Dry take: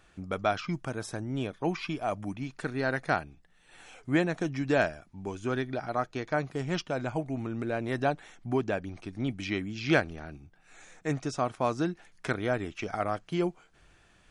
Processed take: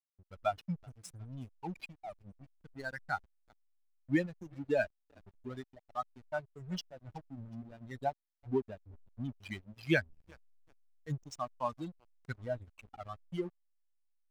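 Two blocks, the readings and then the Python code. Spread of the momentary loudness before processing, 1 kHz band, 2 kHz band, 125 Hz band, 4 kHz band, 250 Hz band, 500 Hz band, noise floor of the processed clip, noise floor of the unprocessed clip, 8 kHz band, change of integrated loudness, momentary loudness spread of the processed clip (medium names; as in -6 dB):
10 LU, -8.0 dB, -7.5 dB, -8.5 dB, -9.0 dB, -8.5 dB, -8.0 dB, -81 dBFS, -62 dBFS, -9.5 dB, -7.5 dB, 18 LU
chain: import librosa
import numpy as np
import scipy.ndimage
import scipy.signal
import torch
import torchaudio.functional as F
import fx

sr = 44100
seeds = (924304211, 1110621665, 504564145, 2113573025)

y = fx.bin_expand(x, sr, power=3.0)
y = fx.echo_thinned(y, sr, ms=371, feedback_pct=58, hz=630.0, wet_db=-22.5)
y = fx.backlash(y, sr, play_db=-44.5)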